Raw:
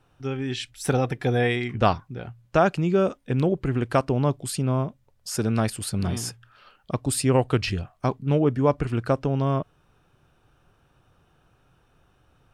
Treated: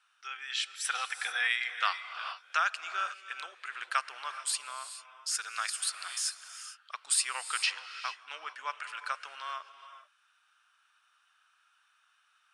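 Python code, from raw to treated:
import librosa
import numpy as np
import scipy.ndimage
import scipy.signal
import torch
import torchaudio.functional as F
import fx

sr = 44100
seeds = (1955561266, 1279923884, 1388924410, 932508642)

y = scipy.signal.sosfilt(scipy.signal.ellip(3, 1.0, 70, [1300.0, 9600.0], 'bandpass', fs=sr, output='sos'), x)
y = fx.rev_gated(y, sr, seeds[0], gate_ms=470, shape='rising', drr_db=10.5)
y = fx.band_squash(y, sr, depth_pct=40, at=(0.95, 2.67))
y = y * 10.0 ** (1.0 / 20.0)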